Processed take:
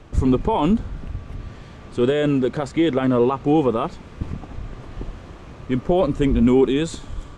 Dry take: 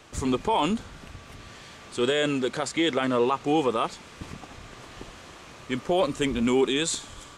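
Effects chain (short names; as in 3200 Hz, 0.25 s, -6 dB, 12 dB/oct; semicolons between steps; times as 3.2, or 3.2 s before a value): tilt -3.5 dB/oct; gain +1.5 dB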